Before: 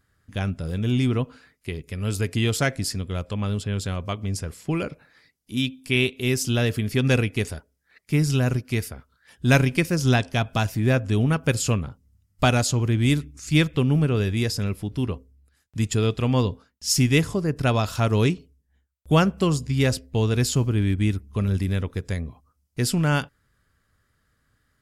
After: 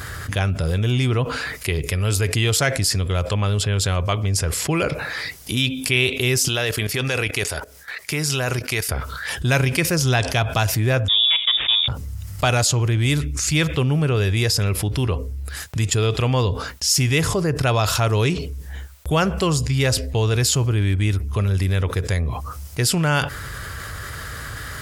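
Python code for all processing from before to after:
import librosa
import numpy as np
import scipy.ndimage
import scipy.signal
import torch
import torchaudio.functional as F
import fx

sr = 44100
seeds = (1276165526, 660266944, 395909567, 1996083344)

y = fx.chain(x, sr, fx.low_shelf(hz=270.0, db=-11.5),
    fx.level_steps(step_db=17), at=(6.48, 8.89))
y = fx.chain(y, sr, fx.median_filter(points=15),
    fx.freq_invert(carrier_hz=3600), at=(11.08, 11.88))
y = scipy.signal.sosfilt(scipy.signal.butter(2, 49.0, 'highpass', fs=sr, output='sos'), y)
y = fx.peak_eq(y, sr, hz=230.0, db=-11.0, octaves=0.99)
y = fx.env_flatten(y, sr, amount_pct=70)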